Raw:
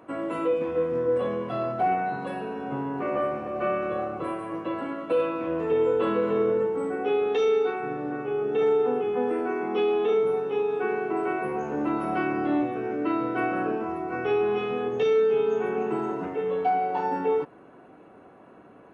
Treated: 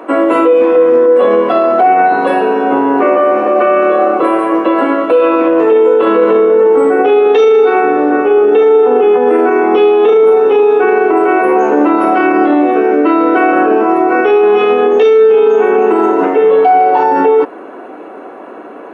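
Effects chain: HPF 280 Hz 24 dB/oct; high shelf 3100 Hz -7.5 dB; maximiser +23.5 dB; gain -1 dB

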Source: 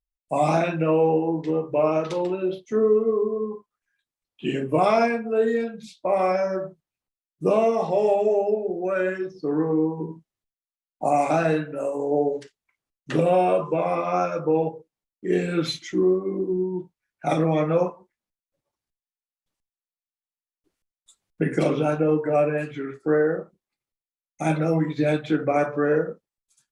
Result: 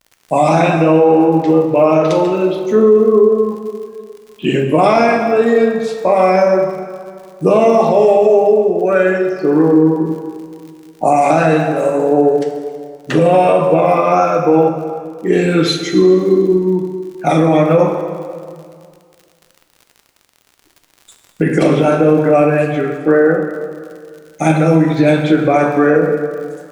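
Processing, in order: crackle 73/s -42 dBFS; plate-style reverb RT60 2.1 s, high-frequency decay 0.75×, DRR 5 dB; maximiser +12 dB; gain -1 dB

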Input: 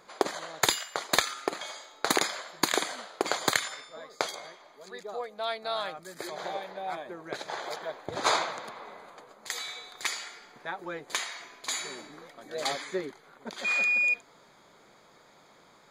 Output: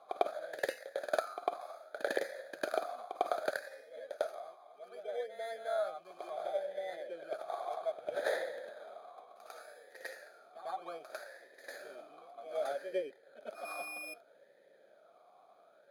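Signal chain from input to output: FFT order left unsorted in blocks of 16 samples; reverse echo 0.1 s -10.5 dB; vowel sweep a-e 0.65 Hz; gain +6 dB

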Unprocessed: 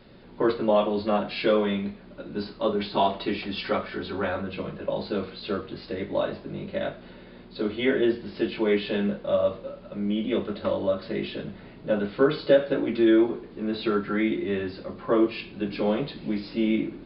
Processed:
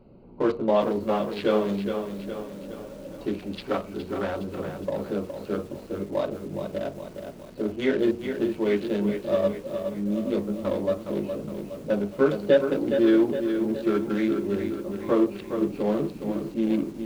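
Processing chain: Wiener smoothing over 25 samples; spectral freeze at 2.19, 1.02 s; lo-fi delay 0.415 s, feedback 55%, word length 8-bit, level -7 dB

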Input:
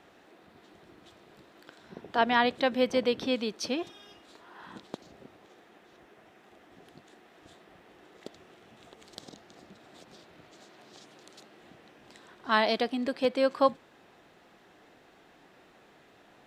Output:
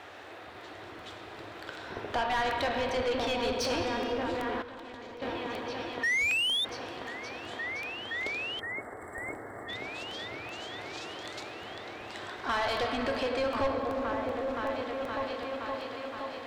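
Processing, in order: compressor 6:1, threshold -32 dBFS, peak gain reduction 14 dB; on a send at -4 dB: reverb RT60 3.3 s, pre-delay 7 ms; 6.03–6.65 on the sum: painted sound rise 1800–3700 Hz -33 dBFS; repeats that get brighter 0.519 s, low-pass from 400 Hz, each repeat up 1 oct, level -3 dB; overdrive pedal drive 21 dB, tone 3300 Hz, clips at -18.5 dBFS; 8.6–9.69 spectral delete 2200–7400 Hz; crackle 250/s -57 dBFS; 4.62–5.22 level quantiser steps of 14 dB; 9–9.65 companded quantiser 8-bit; resonant low shelf 130 Hz +8 dB, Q 3; crackling interface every 0.38 s, samples 64, repeat, from 0.61; gain -1.5 dB

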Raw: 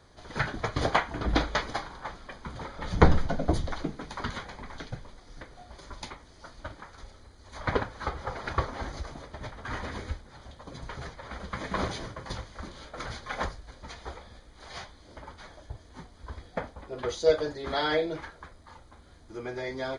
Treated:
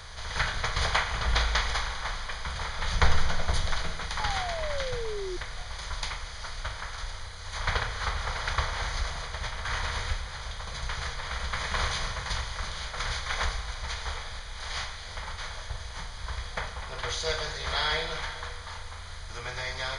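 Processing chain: per-bin compression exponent 0.6; passive tone stack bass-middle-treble 10-0-10; Schroeder reverb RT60 2.3 s, combs from 33 ms, DRR 8 dB; painted sound fall, 4.19–5.37, 350–880 Hz -39 dBFS; gain +4 dB

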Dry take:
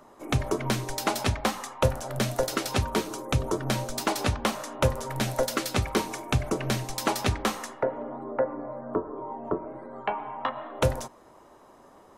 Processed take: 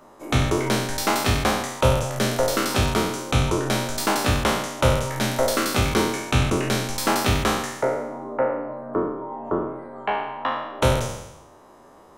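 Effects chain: spectral trails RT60 0.94 s; gain +1.5 dB

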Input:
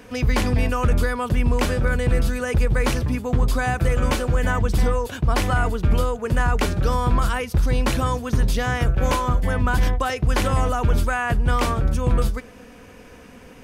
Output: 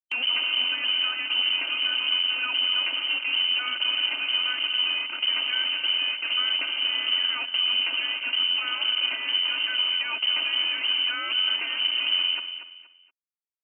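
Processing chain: compressor 4:1, threshold -24 dBFS, peak gain reduction 9 dB; bit-crush 5-bit; inverted band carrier 3000 Hz; upward compressor, threshold -27 dBFS; elliptic high-pass 260 Hz, stop band 50 dB; bell 490 Hz -9 dB 2.3 oct; notch 1800 Hz, Q 6.6; comb 3.3 ms, depth 46%; feedback echo 0.236 s, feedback 29%, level -10 dB

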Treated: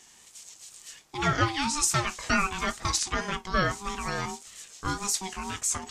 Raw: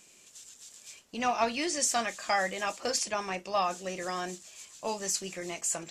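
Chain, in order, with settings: ring modulator 580 Hz; wow and flutter 71 cents; gain +6 dB

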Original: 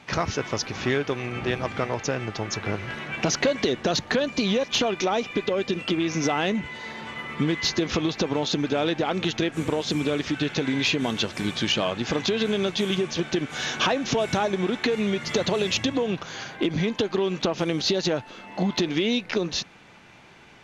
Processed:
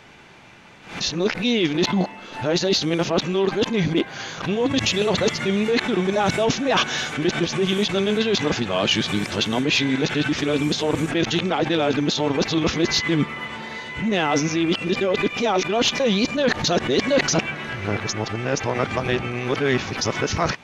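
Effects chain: whole clip reversed; backwards sustainer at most 110 dB/s; gain +3.5 dB

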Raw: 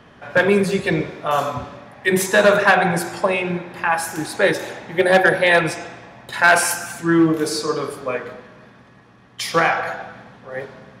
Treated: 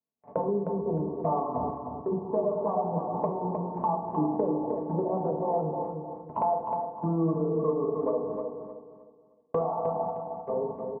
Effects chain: recorder AGC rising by 6.9 dB/s; steep low-pass 1100 Hz 96 dB/oct; gate -32 dBFS, range -52 dB; HPF 76 Hz; comb 4.5 ms, depth 66%; compressor 5:1, threshold -28 dBFS, peak gain reduction 18 dB; on a send: feedback echo 0.309 s, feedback 31%, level -6 dB; on the sum: FDN reverb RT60 0.71 s, low-frequency decay 1.55×, high-frequency decay 0.9×, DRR 6 dB

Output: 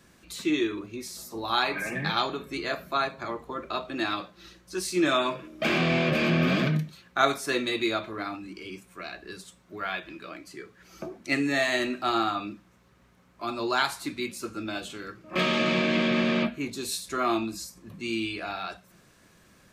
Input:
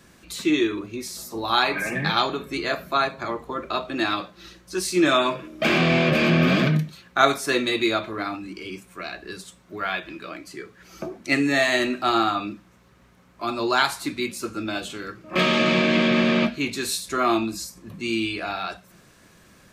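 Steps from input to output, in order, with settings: 16.42–16.91 bell 7400 Hz -> 1300 Hz -14 dB 0.67 oct; gain -5 dB

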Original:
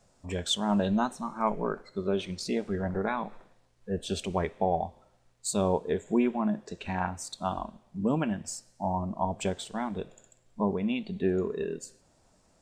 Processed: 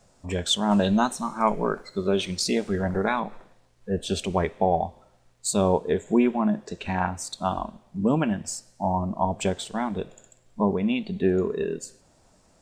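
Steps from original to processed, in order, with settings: 0.71–3.2 high shelf 3200 Hz +8.5 dB; gain +5 dB

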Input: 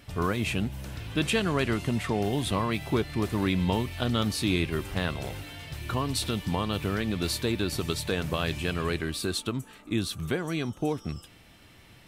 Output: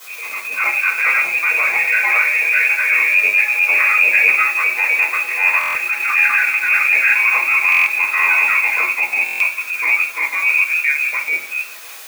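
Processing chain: grains, spray 0.749 s, pitch spread up and down by 0 st; inverted band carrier 2600 Hz; AGC gain up to 15.5 dB; requantised 6-bit, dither triangular; shoebox room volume 40 m³, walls mixed, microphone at 2 m; transient shaper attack -7 dB, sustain -2 dB; HPF 700 Hz 12 dB/oct; stuck buffer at 5.59/7.7/9.24, samples 1024, times 6; gain -8.5 dB

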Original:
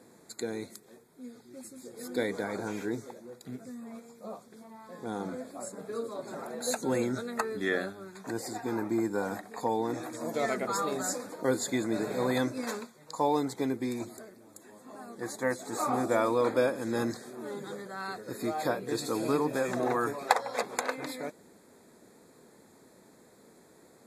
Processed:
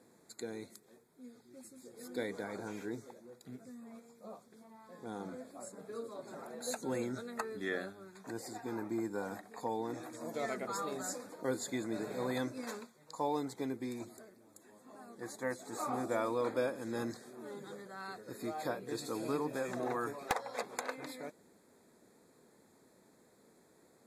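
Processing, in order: wavefolder -13 dBFS; gain -7.5 dB

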